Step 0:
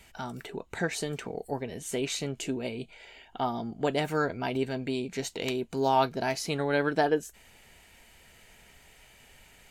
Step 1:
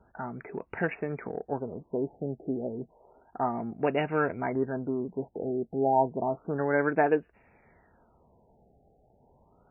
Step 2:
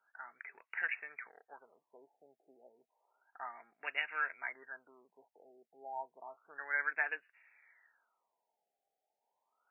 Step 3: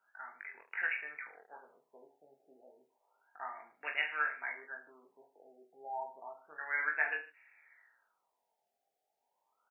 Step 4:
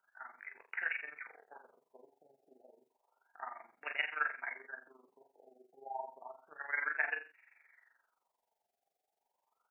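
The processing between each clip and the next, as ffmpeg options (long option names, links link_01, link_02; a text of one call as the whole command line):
ffmpeg -i in.wav -af "adynamicsmooth=sensitivity=5:basefreq=1600,highpass=frequency=100:poles=1,afftfilt=real='re*lt(b*sr/1024,820*pow(2900/820,0.5+0.5*sin(2*PI*0.31*pts/sr)))':imag='im*lt(b*sr/1024,820*pow(2900/820,0.5+0.5*sin(2*PI*0.31*pts/sr)))':win_size=1024:overlap=0.75,volume=1.5dB" out.wav
ffmpeg -i in.wav -af "highpass=frequency=1900:width_type=q:width=2.1,volume=-4.5dB" out.wav
ffmpeg -i in.wav -af "aecho=1:1:20|44|72.8|107.4|148.8:0.631|0.398|0.251|0.158|0.1" out.wav
ffmpeg -i in.wav -af "tremolo=f=23:d=0.75,volume=1.5dB" out.wav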